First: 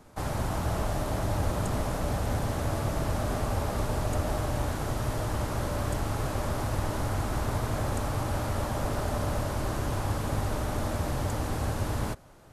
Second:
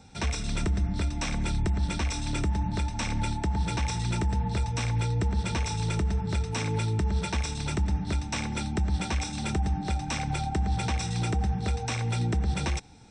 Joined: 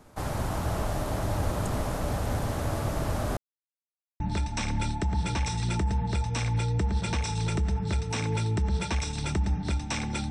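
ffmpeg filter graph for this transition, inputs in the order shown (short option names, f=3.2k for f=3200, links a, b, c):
-filter_complex "[0:a]apad=whole_dur=10.3,atrim=end=10.3,asplit=2[a][b];[a]atrim=end=3.37,asetpts=PTS-STARTPTS,afade=t=out:st=3.366:d=0.004:c=hsin[c];[b]atrim=start=3.37:end=4.2,asetpts=PTS-STARTPTS,volume=0[d];[1:a]atrim=start=2.62:end=8.72,asetpts=PTS-STARTPTS,afade=t=in:d=0.004:c=hsin[e];[c][d][e]concat=n=3:v=0:a=1"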